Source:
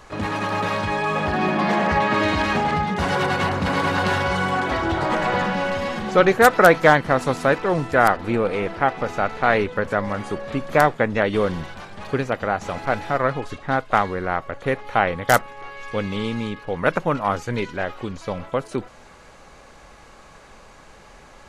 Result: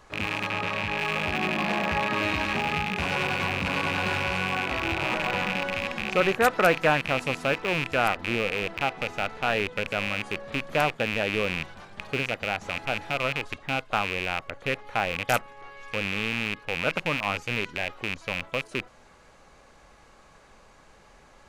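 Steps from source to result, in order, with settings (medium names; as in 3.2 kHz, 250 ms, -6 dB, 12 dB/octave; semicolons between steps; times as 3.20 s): rattle on loud lows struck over -32 dBFS, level -8 dBFS; 0.48–0.99 s: treble shelf 6.6 kHz -8 dB; trim -8 dB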